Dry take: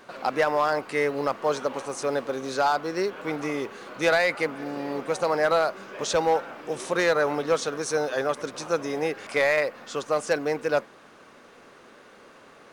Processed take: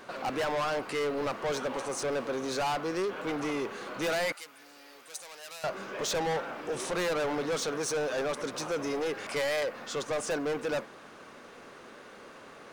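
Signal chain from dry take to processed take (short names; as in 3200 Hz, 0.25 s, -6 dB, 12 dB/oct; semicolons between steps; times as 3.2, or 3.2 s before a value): soft clip -29 dBFS, distortion -6 dB; 4.32–5.64 pre-emphasis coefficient 0.97; gain +1.5 dB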